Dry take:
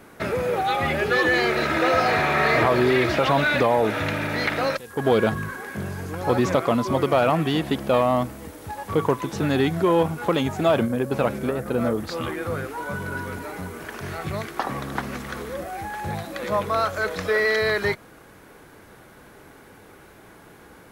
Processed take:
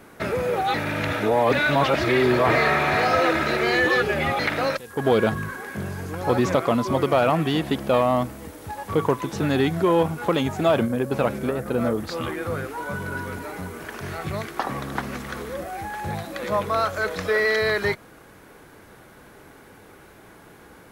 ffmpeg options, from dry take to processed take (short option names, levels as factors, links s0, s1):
-filter_complex "[0:a]asplit=3[s0][s1][s2];[s0]atrim=end=0.742[s3];[s1]atrim=start=0.738:end=4.392,asetpts=PTS-STARTPTS,areverse[s4];[s2]atrim=start=4.388[s5];[s3][s4]acrossfade=d=0.004:c1=hsin:c2=hsin[s6];[s6][s5]acrossfade=d=0.004:c1=hsin:c2=hsin"